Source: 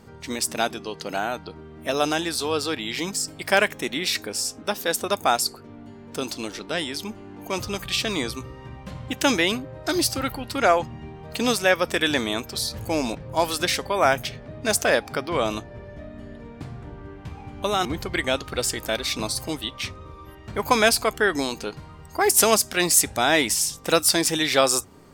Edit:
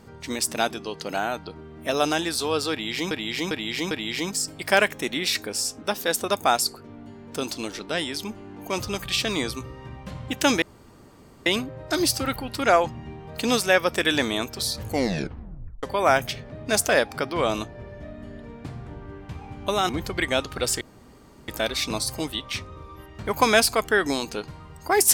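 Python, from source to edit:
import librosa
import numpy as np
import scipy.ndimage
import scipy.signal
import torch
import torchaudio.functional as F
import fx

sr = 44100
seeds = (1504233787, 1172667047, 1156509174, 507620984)

y = fx.edit(x, sr, fx.repeat(start_s=2.71, length_s=0.4, count=4),
    fx.insert_room_tone(at_s=9.42, length_s=0.84),
    fx.tape_stop(start_s=12.83, length_s=0.96),
    fx.insert_room_tone(at_s=18.77, length_s=0.67), tone=tone)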